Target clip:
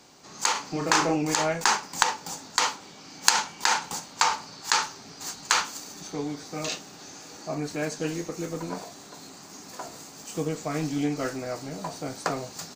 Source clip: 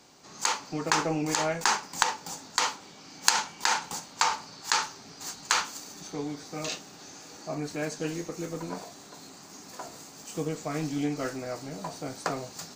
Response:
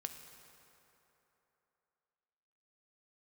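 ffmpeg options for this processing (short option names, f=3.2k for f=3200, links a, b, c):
-filter_complex "[0:a]asplit=3[a][b][c];[a]afade=t=out:st=0.54:d=0.02[d];[b]asplit=2[e][f];[f]adelay=35,volume=-3.5dB[g];[e][g]amix=inputs=2:normalize=0,afade=t=in:st=0.54:d=0.02,afade=t=out:st=1.15:d=0.02[h];[c]afade=t=in:st=1.15:d=0.02[i];[d][h][i]amix=inputs=3:normalize=0,volume=2.5dB"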